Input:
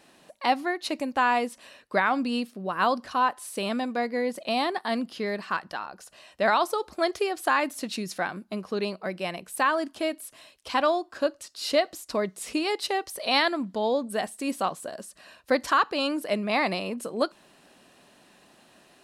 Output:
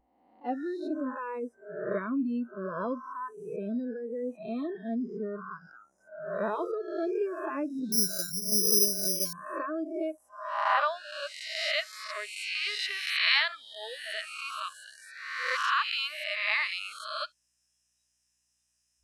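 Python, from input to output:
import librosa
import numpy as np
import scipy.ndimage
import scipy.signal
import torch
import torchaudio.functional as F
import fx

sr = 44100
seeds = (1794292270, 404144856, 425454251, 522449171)

y = fx.spec_swells(x, sr, rise_s=1.37)
y = fx.filter_sweep_bandpass(y, sr, from_hz=270.0, to_hz=2600.0, start_s=9.85, end_s=11.12, q=1.2)
y = fx.add_hum(y, sr, base_hz=60, snr_db=30)
y = fx.noise_reduce_blind(y, sr, reduce_db=28)
y = fx.resample_bad(y, sr, factor=8, down='filtered', up='zero_stuff', at=(7.92, 9.33))
y = y * librosa.db_to_amplitude(-1.5)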